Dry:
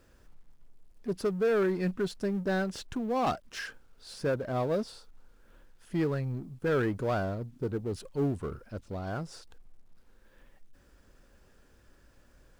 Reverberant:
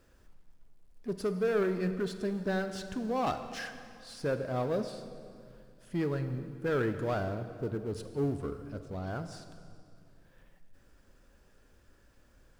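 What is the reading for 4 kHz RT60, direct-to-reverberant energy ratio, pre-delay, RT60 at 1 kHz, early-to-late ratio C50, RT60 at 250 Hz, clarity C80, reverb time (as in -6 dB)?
2.0 s, 8.5 dB, 21 ms, 2.2 s, 9.5 dB, 2.7 s, 10.5 dB, 2.3 s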